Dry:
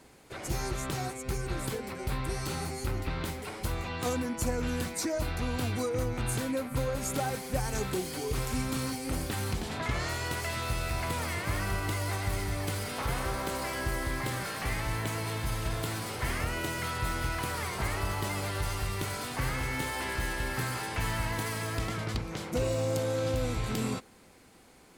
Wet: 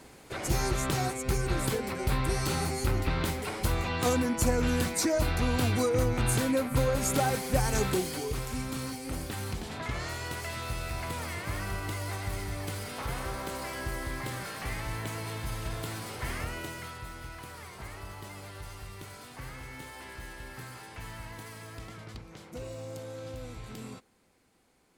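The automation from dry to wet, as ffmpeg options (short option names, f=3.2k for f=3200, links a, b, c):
-af "volume=4.5dB,afade=t=out:st=7.87:d=0.54:silence=0.421697,afade=t=out:st=16.41:d=0.66:silence=0.398107"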